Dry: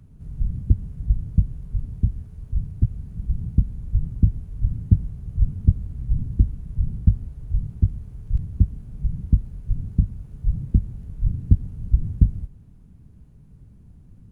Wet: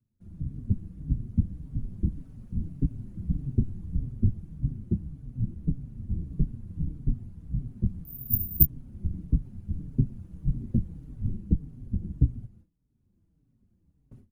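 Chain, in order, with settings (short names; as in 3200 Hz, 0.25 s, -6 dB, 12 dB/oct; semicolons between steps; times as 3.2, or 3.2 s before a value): gate with hold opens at -37 dBFS; AGC gain up to 12 dB; whisperiser; 8.05–8.66 careless resampling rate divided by 3×, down none, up zero stuff; endless flanger 4.9 ms -1.7 Hz; gain -6.5 dB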